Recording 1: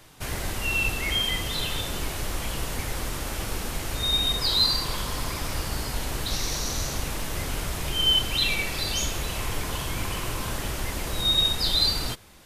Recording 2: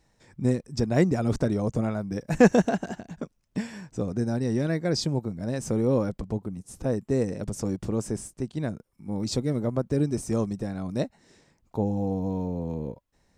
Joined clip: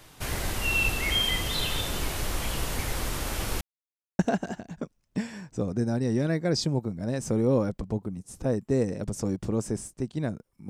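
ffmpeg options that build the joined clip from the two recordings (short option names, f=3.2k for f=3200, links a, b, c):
-filter_complex "[0:a]apad=whole_dur=10.69,atrim=end=10.69,asplit=2[a][b];[a]atrim=end=3.61,asetpts=PTS-STARTPTS,afade=t=out:st=3.606:d=0.004:c=hsin[c];[b]atrim=start=3.61:end=4.19,asetpts=PTS-STARTPTS,volume=0[d];[1:a]atrim=start=2.59:end=9.09,asetpts=PTS-STARTPTS,afade=t=in:d=0.004:c=hsin[e];[c][d][e]concat=n=3:v=0:a=1"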